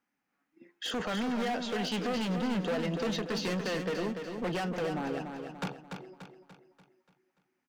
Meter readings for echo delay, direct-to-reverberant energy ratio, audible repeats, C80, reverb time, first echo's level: 291 ms, no reverb, 5, no reverb, no reverb, -6.5 dB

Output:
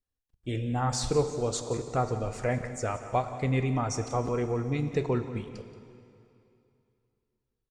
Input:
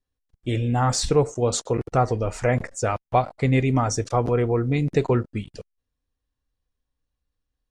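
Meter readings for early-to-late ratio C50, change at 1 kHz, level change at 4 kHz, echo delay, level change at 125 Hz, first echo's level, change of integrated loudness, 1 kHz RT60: 9.0 dB, -7.0 dB, -7.0 dB, 178 ms, -7.5 dB, -15.5 dB, -7.0 dB, 2.7 s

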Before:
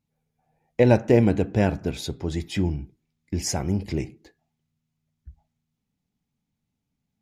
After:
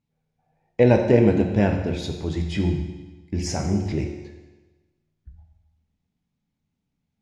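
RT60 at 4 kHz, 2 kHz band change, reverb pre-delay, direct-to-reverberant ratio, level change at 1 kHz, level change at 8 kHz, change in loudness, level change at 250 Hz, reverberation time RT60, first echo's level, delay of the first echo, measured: 1.2 s, +1.0 dB, 11 ms, 3.5 dB, +1.0 dB, -4.0 dB, +1.5 dB, +2.0 dB, 1.2 s, no echo, no echo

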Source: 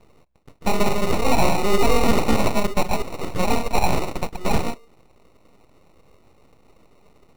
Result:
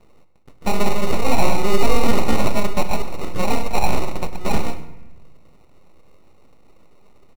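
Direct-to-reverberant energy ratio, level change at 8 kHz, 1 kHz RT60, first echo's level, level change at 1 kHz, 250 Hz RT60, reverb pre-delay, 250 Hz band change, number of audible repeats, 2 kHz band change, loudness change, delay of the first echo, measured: 9.0 dB, -0.5 dB, 1.0 s, -16.5 dB, -0.5 dB, 1.5 s, 4 ms, -0.5 dB, 1, -0.5 dB, -0.5 dB, 100 ms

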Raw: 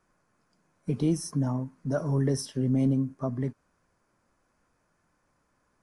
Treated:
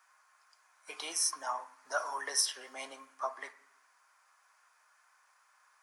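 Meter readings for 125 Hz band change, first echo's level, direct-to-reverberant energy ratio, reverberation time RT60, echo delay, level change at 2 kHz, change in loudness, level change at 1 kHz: under -40 dB, no echo, 9.0 dB, 0.70 s, no echo, +8.0 dB, -6.0 dB, +5.5 dB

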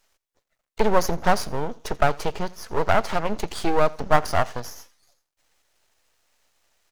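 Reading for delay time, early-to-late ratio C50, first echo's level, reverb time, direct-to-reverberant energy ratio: 84 ms, no reverb, -23.0 dB, no reverb, no reverb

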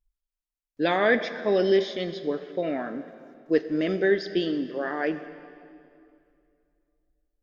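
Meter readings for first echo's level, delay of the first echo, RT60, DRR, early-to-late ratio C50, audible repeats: no echo, no echo, 2.5 s, 11.0 dB, 11.5 dB, no echo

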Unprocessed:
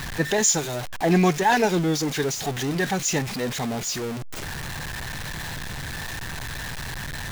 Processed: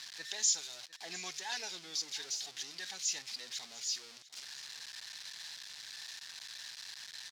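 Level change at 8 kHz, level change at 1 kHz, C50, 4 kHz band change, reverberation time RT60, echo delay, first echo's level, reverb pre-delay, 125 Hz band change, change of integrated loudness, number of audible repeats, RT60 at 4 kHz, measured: -9.0 dB, -25.5 dB, no reverb, -6.5 dB, no reverb, 701 ms, -19.0 dB, no reverb, under -40 dB, -13.5 dB, 1, no reverb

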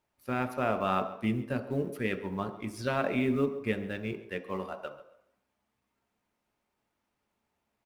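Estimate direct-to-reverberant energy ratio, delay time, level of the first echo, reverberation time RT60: 6.5 dB, 137 ms, -17.5 dB, 0.75 s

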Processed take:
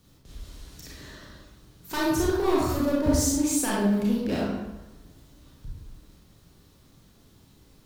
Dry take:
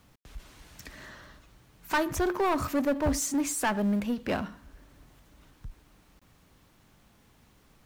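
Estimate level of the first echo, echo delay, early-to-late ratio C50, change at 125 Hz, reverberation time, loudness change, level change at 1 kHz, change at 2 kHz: no echo, no echo, -1.5 dB, +6.0 dB, 1.0 s, +3.5 dB, -1.0 dB, -1.5 dB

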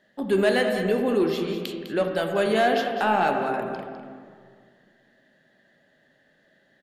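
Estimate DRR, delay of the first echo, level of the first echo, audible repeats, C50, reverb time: 3.0 dB, 203 ms, -10.5 dB, 1, 3.5 dB, 2.1 s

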